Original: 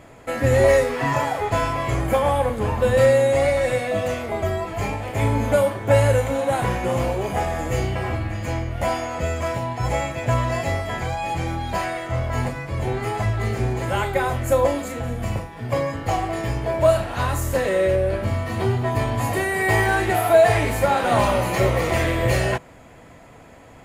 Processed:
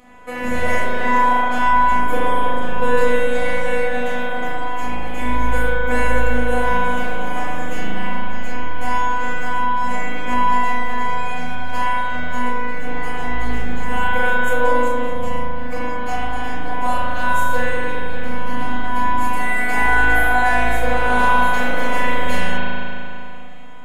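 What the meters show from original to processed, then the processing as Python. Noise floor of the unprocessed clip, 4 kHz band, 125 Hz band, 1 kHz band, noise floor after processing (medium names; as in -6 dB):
-45 dBFS, +1.5 dB, -8.5 dB, +6.0 dB, -20 dBFS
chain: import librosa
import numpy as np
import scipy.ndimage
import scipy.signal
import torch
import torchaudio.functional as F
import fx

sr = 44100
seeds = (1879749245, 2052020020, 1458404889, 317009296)

y = fx.robotise(x, sr, hz=248.0)
y = fx.rev_spring(y, sr, rt60_s=2.9, pass_ms=(37,), chirp_ms=65, drr_db=-9.0)
y = y * librosa.db_to_amplitude(-2.0)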